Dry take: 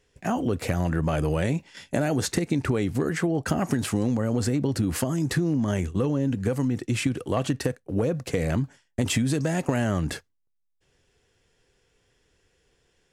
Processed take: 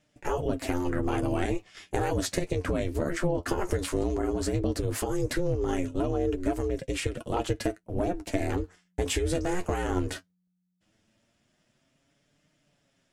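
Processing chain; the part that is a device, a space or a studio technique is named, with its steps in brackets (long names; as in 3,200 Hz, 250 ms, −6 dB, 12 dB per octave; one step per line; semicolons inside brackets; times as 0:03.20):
alien voice (ring modulation 180 Hz; flanger 0.16 Hz, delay 6.5 ms, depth 5.6 ms, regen +35%)
level +3.5 dB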